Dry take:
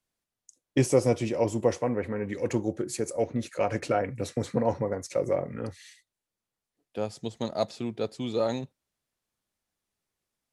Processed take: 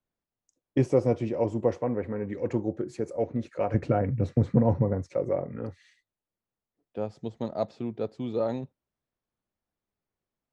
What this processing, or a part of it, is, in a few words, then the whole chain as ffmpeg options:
through cloth: -filter_complex "[0:a]asettb=1/sr,asplit=3[s0][s1][s2];[s0]atrim=end=3.744[s3];[s1]atrim=start=3.74:end=5.09,asetpts=PTS-STARTPTS,afade=t=in:d=0.004:c=qsin,afade=t=out:st=1.346:d=0.004:c=qsin,bass=f=250:g=11,treble=f=4000:g=-2[s4];[s2]atrim=start=5.086[s5];[s3][s4]acrossfade=d=0.004:c1=hsin:c2=qsin[s6];[s6][s5]acrossfade=d=0.004:c1=qsin:c2=hsin,lowpass=6800,highshelf=f=2200:g=-15"

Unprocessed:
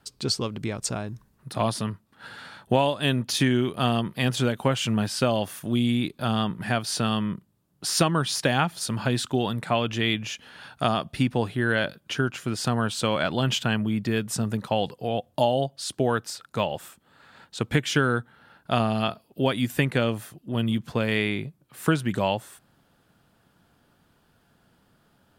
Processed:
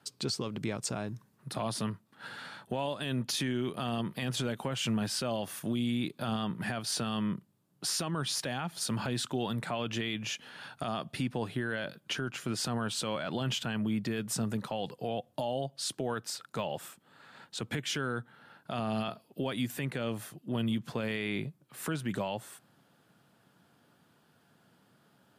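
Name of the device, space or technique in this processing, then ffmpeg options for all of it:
podcast mastering chain: -af "highpass=f=110:w=0.5412,highpass=f=110:w=1.3066,acompressor=threshold=0.0501:ratio=2.5,alimiter=limit=0.0841:level=0:latency=1:release=14,volume=0.841" -ar 32000 -c:a libmp3lame -b:a 96k

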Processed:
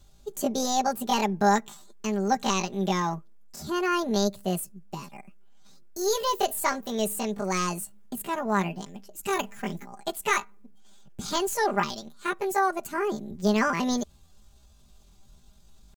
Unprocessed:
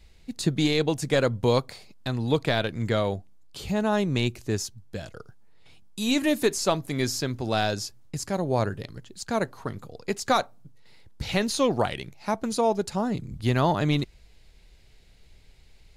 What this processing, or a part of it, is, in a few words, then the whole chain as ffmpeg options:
chipmunk voice: -filter_complex "[0:a]asetrate=74167,aresample=44100,atempo=0.594604,aecho=1:1:5:0.63,asettb=1/sr,asplit=3[s0][s1][s2];[s0]atrim=end=9.234[s3];[s1]atrim=start=9.23:end=9.84,asetpts=PTS-STARTPTS,afade=t=in:d=0.004:c=qsin,afade=t=out:st=0.606:d=0.004:c=qsin,bass=f=250:g=5,treble=f=4000:g=8[s4];[s2]atrim=start=9.836[s5];[s3][s4]acrossfade=d=0.004:c1=hsin:c2=qsin[s6];[s6][s5]acrossfade=d=0.004:c1=qsin:c2=hsin,volume=0.708"

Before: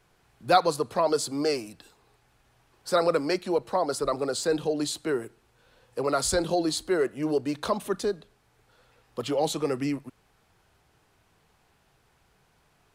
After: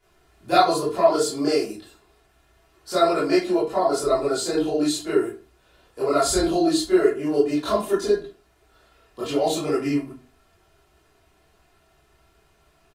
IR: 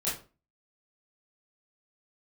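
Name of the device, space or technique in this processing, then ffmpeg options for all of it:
microphone above a desk: -filter_complex "[0:a]aecho=1:1:2.9:0.62[s0];[1:a]atrim=start_sample=2205[s1];[s0][s1]afir=irnorm=-1:irlink=0,volume=0.708"

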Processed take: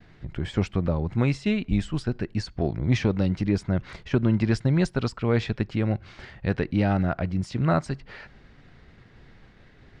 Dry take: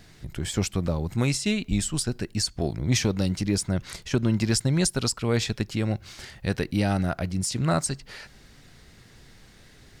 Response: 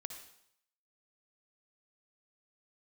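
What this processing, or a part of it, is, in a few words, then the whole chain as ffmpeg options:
hearing-loss simulation: -af "lowpass=2400,agate=range=0.0224:threshold=0.00316:ratio=3:detection=peak,volume=1.19"

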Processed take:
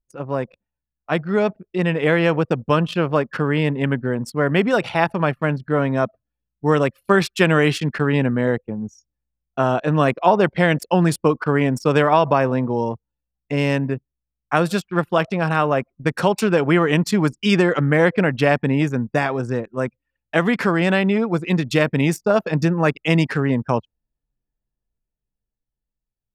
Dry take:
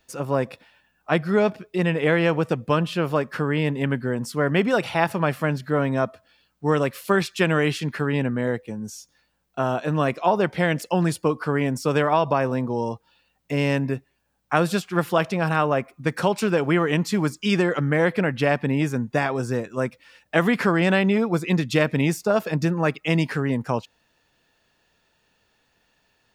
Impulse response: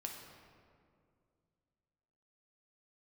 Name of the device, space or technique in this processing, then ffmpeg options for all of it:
voice memo with heavy noise removal: -af "anlmdn=10,dynaudnorm=f=180:g=17:m=3.76,volume=0.891"

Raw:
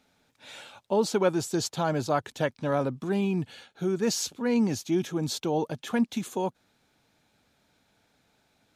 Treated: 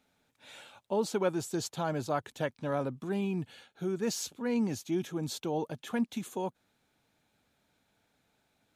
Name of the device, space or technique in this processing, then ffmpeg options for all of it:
exciter from parts: -filter_complex "[0:a]asplit=2[s0][s1];[s1]highpass=f=4700:w=0.5412,highpass=f=4700:w=1.3066,asoftclip=type=tanh:threshold=0.0473,volume=0.355[s2];[s0][s2]amix=inputs=2:normalize=0,volume=0.531"

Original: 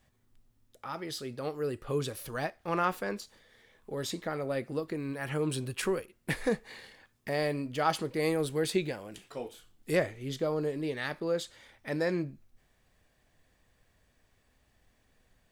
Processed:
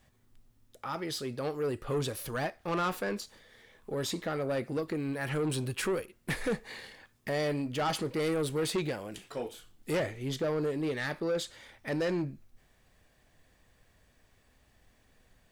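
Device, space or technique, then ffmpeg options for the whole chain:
saturation between pre-emphasis and de-emphasis: -af "highshelf=f=8400:g=8.5,asoftclip=type=tanh:threshold=0.0355,highshelf=f=8400:g=-8.5,volume=1.5"

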